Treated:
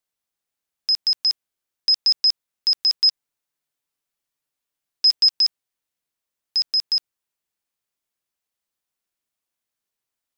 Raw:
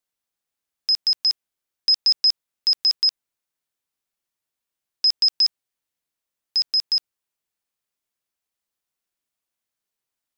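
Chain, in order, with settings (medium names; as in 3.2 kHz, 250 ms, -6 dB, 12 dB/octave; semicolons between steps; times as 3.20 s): 3.02–5.30 s: comb 6.9 ms, depth 40%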